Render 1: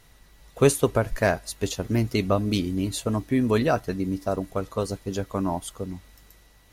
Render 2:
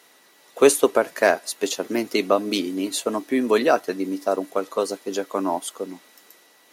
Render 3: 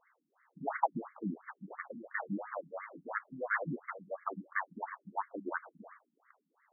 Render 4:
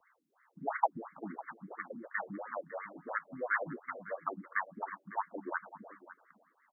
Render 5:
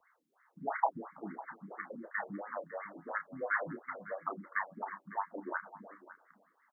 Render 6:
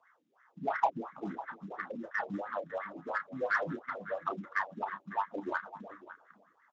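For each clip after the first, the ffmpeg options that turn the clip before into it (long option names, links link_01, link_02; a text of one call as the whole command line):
ffmpeg -i in.wav -af "highpass=frequency=280:width=0.5412,highpass=frequency=280:width=1.3066,volume=5dB" out.wav
ffmpeg -i in.wav -af "aeval=exprs='abs(val(0))':channel_layout=same,tiltshelf=frequency=830:gain=-3.5,afftfilt=real='re*between(b*sr/1024,210*pow(1600/210,0.5+0.5*sin(2*PI*2.9*pts/sr))/1.41,210*pow(1600/210,0.5+0.5*sin(2*PI*2.9*pts/sr))*1.41)':imag='im*between(b*sr/1024,210*pow(1600/210,0.5+0.5*sin(2*PI*2.9*pts/sr))/1.41,210*pow(1600/210,0.5+0.5*sin(2*PI*2.9*pts/sr))*1.41)':win_size=1024:overlap=0.75,volume=-2.5dB" out.wav
ffmpeg -i in.wav -filter_complex "[0:a]acrossover=split=150|380|1100[link_01][link_02][link_03][link_04];[link_01]acompressor=threshold=-60dB:ratio=6[link_05];[link_02]alimiter=level_in=17.5dB:limit=-24dB:level=0:latency=1:release=410,volume=-17.5dB[link_06];[link_05][link_06][link_03][link_04]amix=inputs=4:normalize=0,aecho=1:1:553:0.15,volume=1dB" out.wav
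ffmpeg -i in.wav -filter_complex "[0:a]asplit=2[link_01][link_02];[link_02]adelay=30,volume=-8.5dB[link_03];[link_01][link_03]amix=inputs=2:normalize=0,volume=-1dB" out.wav
ffmpeg -i in.wav -filter_complex "[0:a]asplit=2[link_01][link_02];[link_02]asoftclip=type=tanh:threshold=-32dB,volume=-3.5dB[link_03];[link_01][link_03]amix=inputs=2:normalize=0" -ar 16000 -c:a libspeex -b:a 17k out.spx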